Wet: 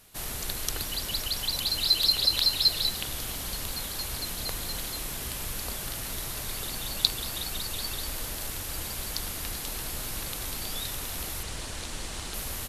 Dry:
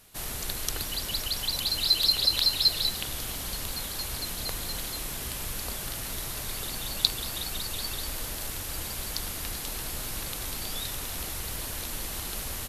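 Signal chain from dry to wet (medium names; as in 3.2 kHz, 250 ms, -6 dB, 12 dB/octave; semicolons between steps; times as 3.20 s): 11.43–12.34 s: low-pass 9.3 kHz 24 dB/octave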